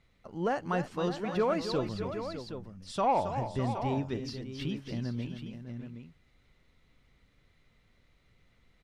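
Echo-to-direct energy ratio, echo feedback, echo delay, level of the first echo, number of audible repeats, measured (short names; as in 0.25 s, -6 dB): -5.5 dB, no steady repeat, 0.272 s, -9.5 dB, 3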